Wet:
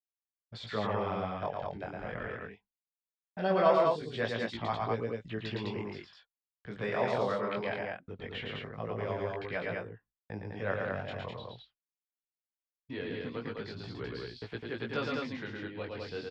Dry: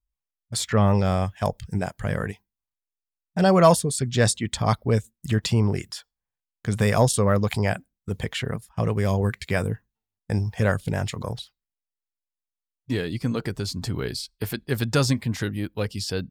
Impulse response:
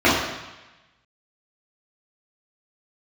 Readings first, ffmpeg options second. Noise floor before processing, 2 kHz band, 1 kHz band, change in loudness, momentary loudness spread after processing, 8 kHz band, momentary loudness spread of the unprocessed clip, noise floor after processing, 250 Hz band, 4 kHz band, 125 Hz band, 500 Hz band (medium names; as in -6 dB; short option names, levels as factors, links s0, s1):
under -85 dBFS, -7.0 dB, -7.0 dB, -10.5 dB, 14 LU, under -30 dB, 12 LU, under -85 dBFS, -13.0 dB, -11.5 dB, -18.0 dB, -7.5 dB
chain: -filter_complex "[0:a]lowpass=f=3600:w=0.5412,lowpass=f=3600:w=1.3066,agate=range=0.0224:threshold=0.00708:ratio=3:detection=peak,acrossover=split=270|590|1800[s0][s1][s2][s3];[s0]acompressor=threshold=0.0141:ratio=6[s4];[s4][s1][s2][s3]amix=inputs=4:normalize=0,flanger=delay=17:depth=7.7:speed=0.21,aecho=1:1:112|129|205:0.668|0.237|0.708,volume=0.447"